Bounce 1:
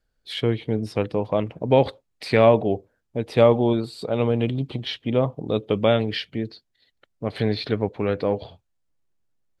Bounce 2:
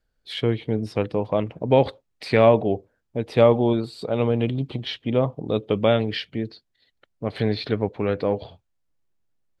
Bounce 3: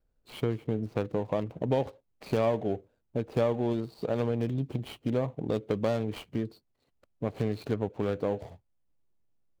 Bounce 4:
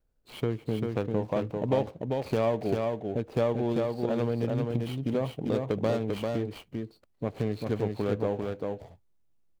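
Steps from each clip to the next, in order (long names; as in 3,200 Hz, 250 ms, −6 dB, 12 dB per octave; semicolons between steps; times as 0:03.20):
high-shelf EQ 7,500 Hz −5.5 dB
running median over 25 samples; downward compressor 2.5 to 1, threshold −28 dBFS, peak gain reduction 12 dB
single-tap delay 394 ms −3.5 dB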